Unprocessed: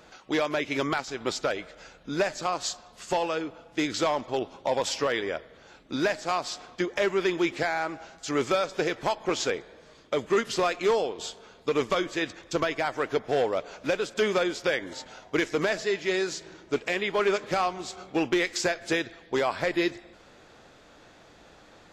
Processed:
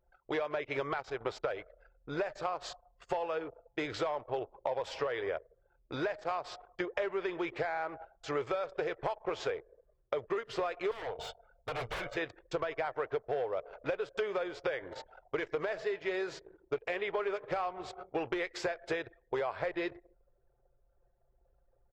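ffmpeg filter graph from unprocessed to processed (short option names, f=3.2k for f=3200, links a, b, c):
-filter_complex "[0:a]asettb=1/sr,asplit=3[a][b][c];[a]atrim=end=10.914[d];[b]atrim=start=10.91:end=12.17,asetpts=PTS-STARTPTS,afade=t=in:d=0.004:c=qsin,afade=t=out:st=1.256:d=0.004:c=qsin,aecho=1:1:1.4:0.71,atrim=end_sample=55566,aeval=exprs='0.0355*(abs(mod(val(0)/0.0355+3,4)-2)-1)':c=same[e];[c]atrim=start=12.166[f];[d][e]acrossfade=d=0.004:c1=hsin:c2=qsin[g];[g][f]acrossfade=d=0.004:c1=qsin:c2=hsin,anlmdn=0.398,firequalizer=gain_entry='entry(120,0);entry(220,-16);entry(430,2);entry(6400,-17)':delay=0.05:min_phase=1,acompressor=threshold=-31dB:ratio=6"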